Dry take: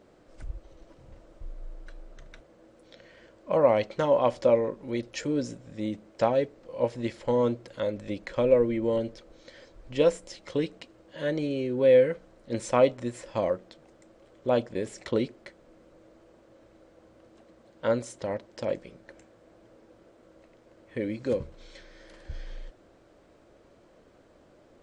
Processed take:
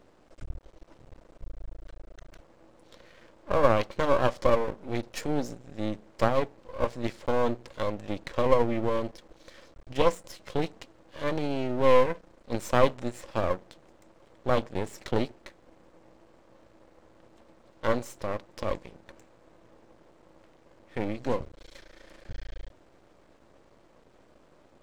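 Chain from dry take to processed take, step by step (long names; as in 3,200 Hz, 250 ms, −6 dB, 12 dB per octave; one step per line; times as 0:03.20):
half-wave rectification
level +3 dB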